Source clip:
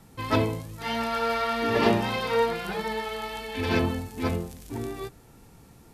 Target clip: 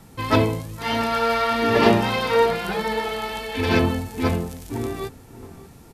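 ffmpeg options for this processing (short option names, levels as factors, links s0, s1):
-filter_complex "[0:a]asplit=2[s0][s1];[s1]adelay=591,lowpass=f=1700:p=1,volume=0.141,asplit=2[s2][s3];[s3]adelay=591,lowpass=f=1700:p=1,volume=0.46,asplit=2[s4][s5];[s5]adelay=591,lowpass=f=1700:p=1,volume=0.46,asplit=2[s6][s7];[s7]adelay=591,lowpass=f=1700:p=1,volume=0.46[s8];[s0][s2][s4][s6][s8]amix=inputs=5:normalize=0,volume=1.88"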